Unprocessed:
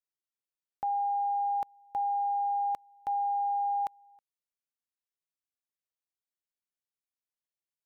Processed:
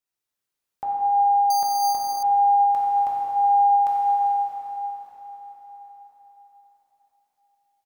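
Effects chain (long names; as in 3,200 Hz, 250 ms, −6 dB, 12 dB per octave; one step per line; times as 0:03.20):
on a send: repeating echo 398 ms, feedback 54%, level −16 dB
on the sum: dense smooth reverb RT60 4.8 s, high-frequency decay 0.85×, DRR −7 dB
0:01.50–0:02.23: bad sample-rate conversion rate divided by 8×, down filtered, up hold
level +3.5 dB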